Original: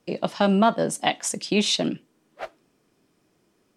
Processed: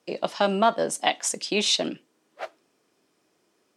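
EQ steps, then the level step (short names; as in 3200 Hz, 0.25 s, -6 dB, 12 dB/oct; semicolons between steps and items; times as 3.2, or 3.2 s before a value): HPF 55 Hz; tone controls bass -12 dB, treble +4 dB; high shelf 9400 Hz -8 dB; 0.0 dB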